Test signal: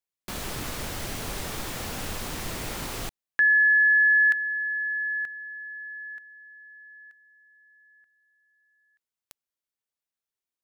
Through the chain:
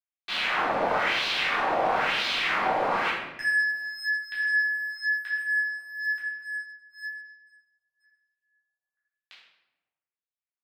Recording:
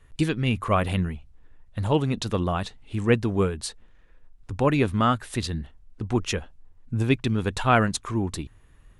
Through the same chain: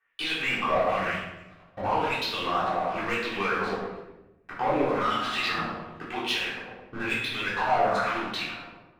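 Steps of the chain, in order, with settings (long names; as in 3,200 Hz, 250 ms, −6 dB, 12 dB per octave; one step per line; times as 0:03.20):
on a send: bucket-brigade delay 107 ms, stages 2,048, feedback 68%, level −16 dB
on the sum: auto-filter band-pass sine 1 Hz 660–3,800 Hz
leveller curve on the samples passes 1
low-pass that shuts in the quiet parts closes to 2,900 Hz, open at −25 dBFS
downward compressor, threshold −33 dBFS
low-shelf EQ 190 Hz −10.5 dB
leveller curve on the samples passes 3
high-shelf EQ 4,100 Hz −9 dB
brickwall limiter −28.5 dBFS
rectangular room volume 380 cubic metres, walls mixed, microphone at 3.6 metres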